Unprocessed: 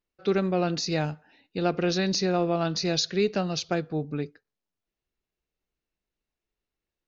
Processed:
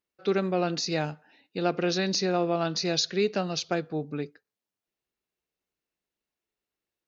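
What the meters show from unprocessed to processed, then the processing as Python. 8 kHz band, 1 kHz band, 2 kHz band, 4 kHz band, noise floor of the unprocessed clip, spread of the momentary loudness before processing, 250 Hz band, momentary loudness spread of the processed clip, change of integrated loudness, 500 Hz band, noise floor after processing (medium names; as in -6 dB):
no reading, 0.0 dB, 0.0 dB, 0.0 dB, under -85 dBFS, 9 LU, -2.0 dB, 9 LU, -1.0 dB, -0.5 dB, under -85 dBFS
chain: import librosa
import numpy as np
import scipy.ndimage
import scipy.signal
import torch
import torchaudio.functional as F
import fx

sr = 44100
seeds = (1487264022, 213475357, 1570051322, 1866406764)

y = fx.highpass(x, sr, hz=190.0, slope=6)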